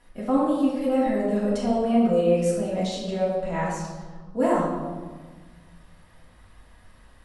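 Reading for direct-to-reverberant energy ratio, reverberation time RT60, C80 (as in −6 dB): −8.5 dB, 1.4 s, 3.0 dB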